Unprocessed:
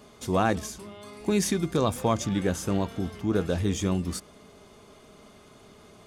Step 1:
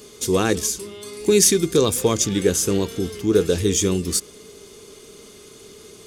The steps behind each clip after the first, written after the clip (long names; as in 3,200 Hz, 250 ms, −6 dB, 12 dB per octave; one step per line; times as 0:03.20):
drawn EQ curve 240 Hz 0 dB, 440 Hz +10 dB, 640 Hz −7 dB, 6,600 Hz +13 dB
level +3 dB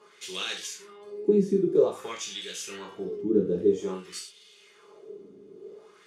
reverb whose tail is shaped and stops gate 140 ms falling, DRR −1.5 dB
auto-filter band-pass sine 0.51 Hz 260–3,400 Hz
speech leveller within 4 dB 2 s
level −6 dB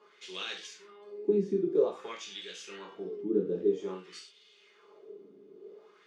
band-pass filter 200–4,500 Hz
level −4.5 dB